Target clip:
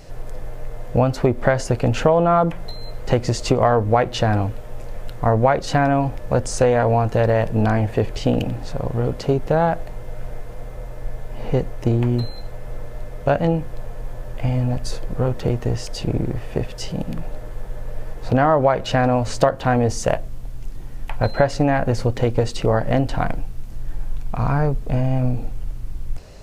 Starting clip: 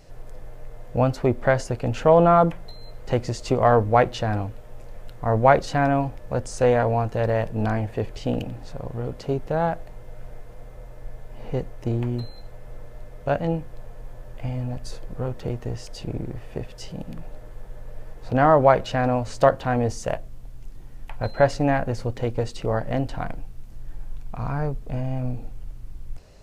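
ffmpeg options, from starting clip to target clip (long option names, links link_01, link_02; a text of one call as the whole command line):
ffmpeg -i in.wav -af "acompressor=threshold=-21dB:ratio=6,volume=8.5dB" out.wav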